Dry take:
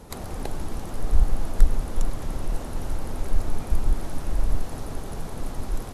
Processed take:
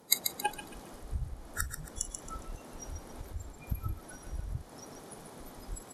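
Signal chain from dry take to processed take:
noise reduction from a noise print of the clip's start 27 dB
downward compressor 3 to 1, threshold −23 dBFS, peak gain reduction 13 dB
high-pass filter 190 Hz 12 dB per octave
notch filter 2,700 Hz, Q 16
delay with a high-pass on its return 137 ms, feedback 34%, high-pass 1,800 Hz, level −6.5 dB
level +17 dB

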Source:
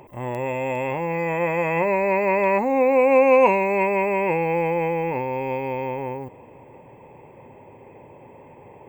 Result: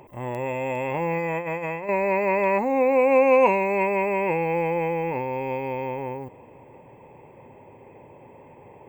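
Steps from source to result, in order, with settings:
0:00.94–0:01.89: compressor whose output falls as the input rises −25 dBFS, ratio −0.5
level −2 dB

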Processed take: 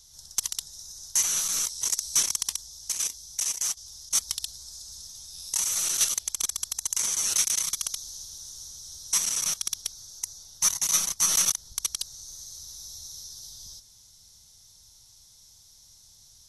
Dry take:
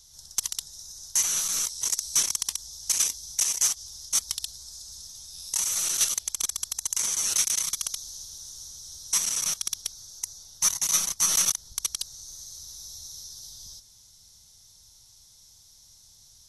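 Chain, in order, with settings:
0:02.60–0:04.11: output level in coarse steps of 9 dB

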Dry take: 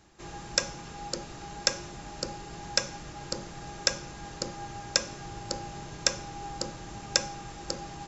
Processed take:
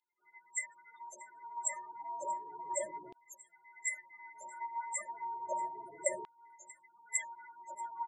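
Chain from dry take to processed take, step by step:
partials spread apart or drawn together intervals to 112%
in parallel at −0.5 dB: output level in coarse steps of 14 dB
on the sum: spectral peaks only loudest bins 16
0:06.36–0:06.82: double-tracking delay 19 ms −6 dB
on a send: single-tap delay 635 ms −20 dB
on the sum: auto-filter high-pass saw down 0.32 Hz 420–3,400 Hz
level −2 dB

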